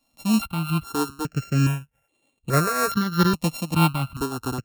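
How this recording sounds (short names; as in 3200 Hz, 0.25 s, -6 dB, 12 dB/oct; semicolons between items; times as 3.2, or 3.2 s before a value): a buzz of ramps at a fixed pitch in blocks of 32 samples; tremolo triangle 3.2 Hz, depth 70%; notches that jump at a steady rate 2.4 Hz 400–5200 Hz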